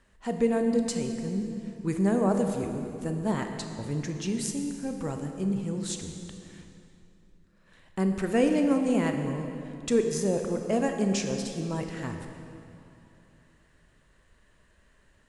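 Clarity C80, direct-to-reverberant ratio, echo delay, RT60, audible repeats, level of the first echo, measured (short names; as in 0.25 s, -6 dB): 6.0 dB, 4.5 dB, none, 2.9 s, none, none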